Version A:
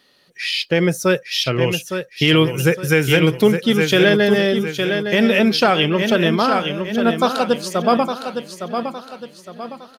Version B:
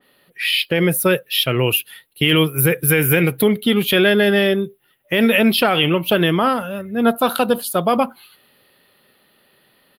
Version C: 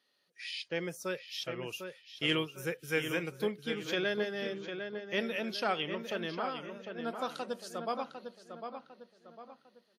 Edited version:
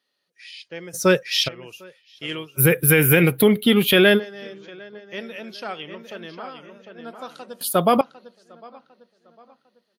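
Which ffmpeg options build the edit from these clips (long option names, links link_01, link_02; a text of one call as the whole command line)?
ffmpeg -i take0.wav -i take1.wav -i take2.wav -filter_complex "[1:a]asplit=2[link_01][link_02];[2:a]asplit=4[link_03][link_04][link_05][link_06];[link_03]atrim=end=0.95[link_07];[0:a]atrim=start=0.93:end=1.49[link_08];[link_04]atrim=start=1.47:end=2.61[link_09];[link_01]atrim=start=2.57:end=4.2[link_10];[link_05]atrim=start=4.16:end=7.612[link_11];[link_02]atrim=start=7.608:end=8.012[link_12];[link_06]atrim=start=8.008[link_13];[link_07][link_08]acrossfade=duration=0.02:curve1=tri:curve2=tri[link_14];[link_14][link_09]acrossfade=duration=0.02:curve1=tri:curve2=tri[link_15];[link_15][link_10]acrossfade=duration=0.04:curve1=tri:curve2=tri[link_16];[link_16][link_11]acrossfade=duration=0.04:curve1=tri:curve2=tri[link_17];[link_17][link_12]acrossfade=duration=0.004:curve1=hsin:curve2=hsin[link_18];[link_18][link_13]acrossfade=duration=0.004:curve1=hsin:curve2=hsin" out.wav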